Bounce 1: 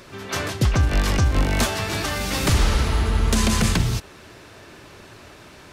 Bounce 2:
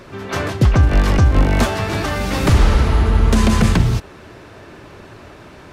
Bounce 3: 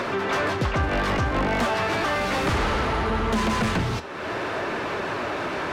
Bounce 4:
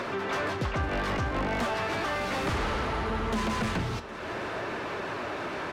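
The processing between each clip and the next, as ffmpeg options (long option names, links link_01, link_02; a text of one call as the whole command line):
ffmpeg -i in.wav -af "highshelf=frequency=2600:gain=-11,volume=6.5dB" out.wav
ffmpeg -i in.wav -filter_complex "[0:a]flanger=delay=4.2:depth=8.5:regen=77:speed=0.62:shape=sinusoidal,acompressor=mode=upward:threshold=-19dB:ratio=2.5,asplit=2[link_01][link_02];[link_02]highpass=frequency=720:poles=1,volume=24dB,asoftclip=type=tanh:threshold=-6.5dB[link_03];[link_01][link_03]amix=inputs=2:normalize=0,lowpass=frequency=2000:poles=1,volume=-6dB,volume=-7.5dB" out.wav
ffmpeg -i in.wav -af "aecho=1:1:763:0.119,volume=-6dB" out.wav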